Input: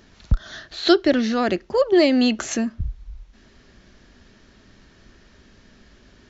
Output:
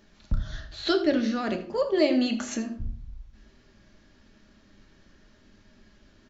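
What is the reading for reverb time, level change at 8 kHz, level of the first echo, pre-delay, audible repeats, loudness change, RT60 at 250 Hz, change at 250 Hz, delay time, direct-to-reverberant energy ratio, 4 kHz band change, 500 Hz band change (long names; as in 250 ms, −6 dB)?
0.55 s, can't be measured, −15.0 dB, 3 ms, 1, −7.0 dB, 0.70 s, −6.5 dB, 80 ms, 3.5 dB, −7.5 dB, −6.5 dB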